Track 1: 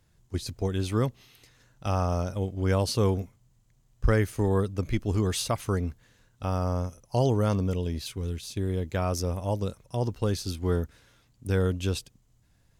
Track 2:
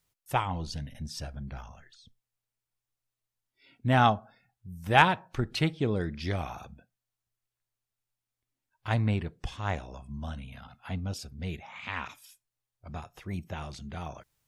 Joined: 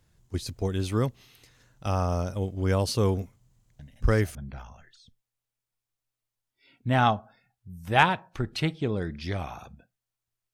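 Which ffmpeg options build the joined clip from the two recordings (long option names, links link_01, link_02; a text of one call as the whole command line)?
ffmpeg -i cue0.wav -i cue1.wav -filter_complex "[1:a]asplit=2[link_01][link_02];[0:a]apad=whole_dur=10.53,atrim=end=10.53,atrim=end=4.352[link_03];[link_02]atrim=start=1.338:end=7.52[link_04];[link_01]atrim=start=0.78:end=1.34,asetpts=PTS-STARTPTS,volume=-8.5dB,afade=type=in:duration=0.004:curve=hsin,afade=type=out:start_time=0.556:duration=0.004:curve=hsin,adelay=3790[link_05];[link_03][link_04]acrossfade=duration=0.004:curve1=hsin:curve2=hsin[link_06];[link_06][link_05]amix=inputs=2:normalize=0" out.wav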